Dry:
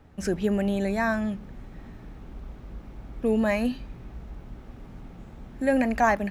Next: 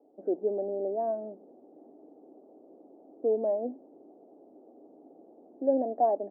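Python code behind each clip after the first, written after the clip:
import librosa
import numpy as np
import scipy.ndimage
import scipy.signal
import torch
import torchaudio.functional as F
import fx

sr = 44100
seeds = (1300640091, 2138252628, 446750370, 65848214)

y = scipy.signal.sosfilt(scipy.signal.ellip(3, 1.0, 70, [290.0, 720.0], 'bandpass', fs=sr, output='sos'), x)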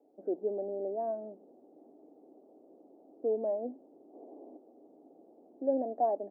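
y = fx.spec_box(x, sr, start_s=4.14, length_s=0.43, low_hz=230.0, high_hz=1200.0, gain_db=9)
y = y * librosa.db_to_amplitude(-4.0)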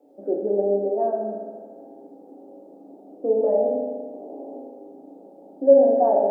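y = fx.rev_fdn(x, sr, rt60_s=1.6, lf_ratio=0.9, hf_ratio=0.8, size_ms=11.0, drr_db=-3.0)
y = y * librosa.db_to_amplitude(7.5)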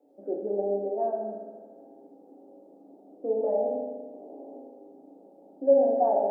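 y = fx.dynamic_eq(x, sr, hz=790.0, q=3.5, threshold_db=-35.0, ratio=4.0, max_db=5)
y = y * librosa.db_to_amplitude(-7.0)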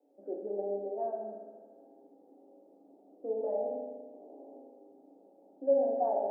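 y = scipy.signal.sosfilt(scipy.signal.butter(2, 210.0, 'highpass', fs=sr, output='sos'), x)
y = y * librosa.db_to_amplitude(-6.5)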